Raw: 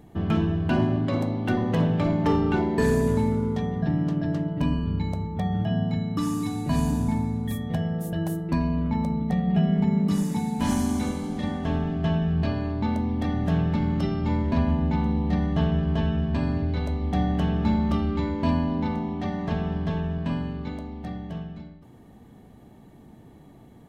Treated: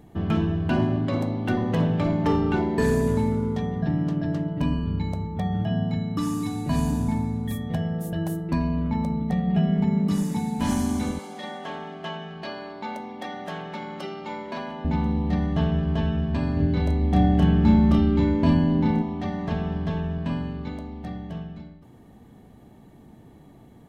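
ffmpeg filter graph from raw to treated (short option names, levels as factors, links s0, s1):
-filter_complex "[0:a]asettb=1/sr,asplit=3[s0][s1][s2];[s0]atrim=end=11.194[s3];[s1]atrim=start=11.19:end=14.85,asetpts=PTS-STARTPTS,afade=t=in:d=0.004:c=qsin,afade=t=out:st=3.656:d=0.004:c=qsin,highpass=480,aecho=1:1:5.4:0.45,atrim=end_sample=161406[s4];[s2]atrim=start=14.846[s5];[s3][s4]acrossfade=d=0.004:c1=hsin:c2=qsin[s6];[s6][s5]acrossfade=d=0.004:c1=qsin:c2=hsin,asettb=1/sr,asplit=3[s7][s8][s9];[s7]atrim=end=16.574[s10];[s8]atrim=start=16.57:end=19.02,asetpts=PTS-STARTPTS,afade=t=in:d=0.004:c=qsin,afade=t=out:st=2.446:d=0.004:c=qsin,lowshelf=f=410:g=5,asplit=2[s11][s12];[s12]adelay=31,volume=0.531[s13];[s11][s13]amix=inputs=2:normalize=0,atrim=end_sample=108045[s14];[s9]atrim=start=19.016[s15];[s10][s14]acrossfade=d=0.004:c1=hsin:c2=qsin[s16];[s16][s15]acrossfade=d=0.004:c1=qsin:c2=hsin"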